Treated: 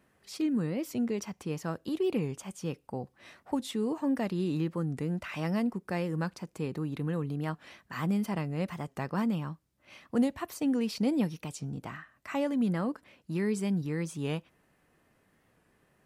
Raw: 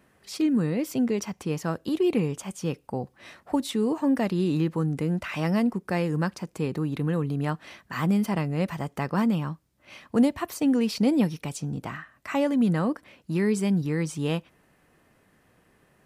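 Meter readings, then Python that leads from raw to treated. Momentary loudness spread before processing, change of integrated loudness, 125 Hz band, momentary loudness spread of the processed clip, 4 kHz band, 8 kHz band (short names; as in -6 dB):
10 LU, -6.0 dB, -6.0 dB, 10 LU, -6.0 dB, -6.0 dB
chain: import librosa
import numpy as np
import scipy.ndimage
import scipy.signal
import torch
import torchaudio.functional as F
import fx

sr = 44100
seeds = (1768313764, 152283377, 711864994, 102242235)

y = fx.record_warp(x, sr, rpm=45.0, depth_cents=100.0)
y = y * librosa.db_to_amplitude(-6.0)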